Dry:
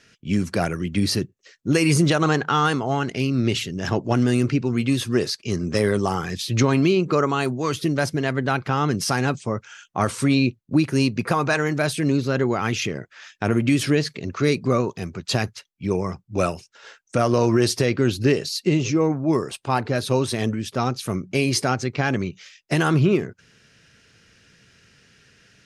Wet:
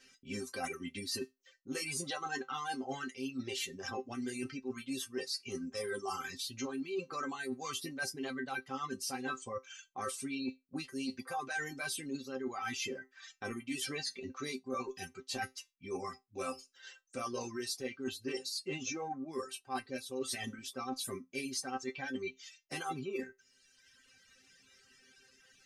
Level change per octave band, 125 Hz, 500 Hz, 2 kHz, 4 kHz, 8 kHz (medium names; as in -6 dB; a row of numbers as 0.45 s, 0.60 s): -29.5 dB, -18.5 dB, -14.0 dB, -12.5 dB, -10.5 dB